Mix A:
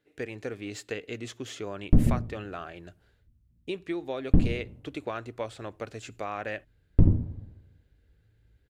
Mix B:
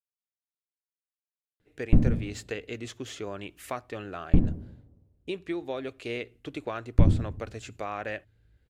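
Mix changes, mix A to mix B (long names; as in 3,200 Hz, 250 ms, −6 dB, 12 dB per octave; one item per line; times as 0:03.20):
speech: entry +1.60 s
background: add high-frequency loss of the air 160 metres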